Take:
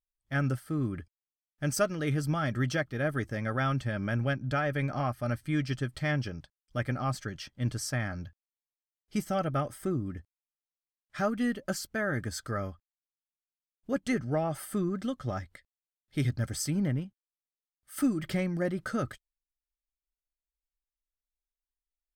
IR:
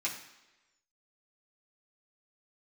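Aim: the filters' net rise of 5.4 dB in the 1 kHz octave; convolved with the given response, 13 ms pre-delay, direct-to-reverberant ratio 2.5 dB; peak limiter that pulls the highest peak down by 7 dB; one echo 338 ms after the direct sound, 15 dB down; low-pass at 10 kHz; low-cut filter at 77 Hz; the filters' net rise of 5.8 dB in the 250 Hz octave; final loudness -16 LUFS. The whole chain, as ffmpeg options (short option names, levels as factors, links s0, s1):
-filter_complex "[0:a]highpass=77,lowpass=10000,equalizer=f=250:t=o:g=7,equalizer=f=1000:t=o:g=7.5,alimiter=limit=0.112:level=0:latency=1,aecho=1:1:338:0.178,asplit=2[s0][s1];[1:a]atrim=start_sample=2205,adelay=13[s2];[s1][s2]afir=irnorm=-1:irlink=0,volume=0.447[s3];[s0][s3]amix=inputs=2:normalize=0,volume=4.47"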